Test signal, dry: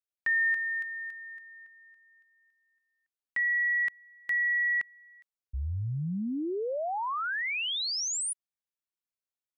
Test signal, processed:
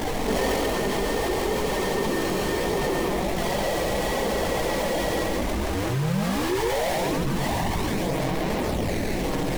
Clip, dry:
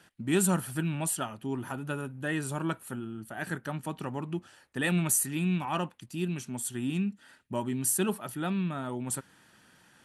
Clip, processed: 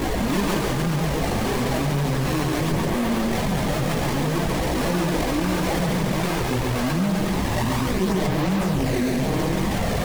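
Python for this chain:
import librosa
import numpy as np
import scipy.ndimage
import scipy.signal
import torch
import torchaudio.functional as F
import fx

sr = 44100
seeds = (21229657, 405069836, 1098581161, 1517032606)

p1 = fx.delta_mod(x, sr, bps=64000, step_db=-24.0)
p2 = scipy.signal.sosfilt(scipy.signal.butter(2, 98.0, 'highpass', fs=sr, output='sos'), p1)
p3 = fx.high_shelf(p2, sr, hz=7600.0, db=-8.5)
p4 = fx.schmitt(p3, sr, flips_db=-28.0)
p5 = p3 + F.gain(torch.from_numpy(p4), -11.5).numpy()
p6 = fx.sample_hold(p5, sr, seeds[0], rate_hz=1400.0, jitter_pct=20)
p7 = fx.chorus_voices(p6, sr, voices=4, hz=0.44, base_ms=18, depth_ms=3.3, mix_pct=70)
p8 = p7 + fx.echo_single(p7, sr, ms=138, db=-4.5, dry=0)
p9 = fx.env_flatten(p8, sr, amount_pct=70)
y = F.gain(torch.from_numpy(p9), 1.5).numpy()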